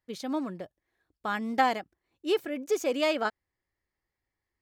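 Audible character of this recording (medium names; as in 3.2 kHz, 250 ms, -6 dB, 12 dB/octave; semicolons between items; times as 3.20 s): noise floor -88 dBFS; spectral tilt -2.0 dB/octave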